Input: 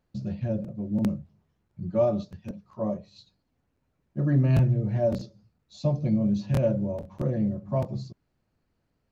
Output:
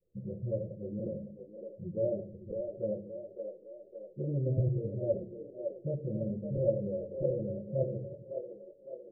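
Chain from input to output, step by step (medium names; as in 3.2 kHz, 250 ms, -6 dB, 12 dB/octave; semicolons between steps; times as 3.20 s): delay that grows with frequency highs late, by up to 288 ms; steep low-pass 580 Hz 72 dB/octave; resonant low shelf 340 Hz -6.5 dB, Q 3; in parallel at -1 dB: compression, threshold -41 dBFS, peak gain reduction 18.5 dB; on the sum: flange 1.2 Hz, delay 1.4 ms, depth 8.3 ms, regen +69%; wow and flutter 17 cents; on a send: two-band feedback delay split 300 Hz, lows 88 ms, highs 560 ms, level -6 dB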